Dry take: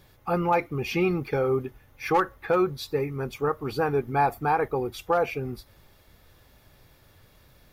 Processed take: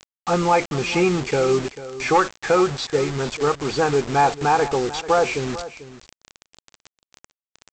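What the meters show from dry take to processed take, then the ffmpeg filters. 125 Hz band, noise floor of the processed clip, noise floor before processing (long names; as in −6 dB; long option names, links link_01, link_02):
+4.0 dB, below −85 dBFS, −58 dBFS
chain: -af "aeval=exprs='val(0)+0.5*0.015*sgn(val(0))':channel_layout=same,equalizer=frequency=75:width_type=o:width=0.84:gain=-13.5,aresample=16000,acrusher=bits=5:mix=0:aa=0.000001,aresample=44100,aecho=1:1:443:0.178,volume=5dB"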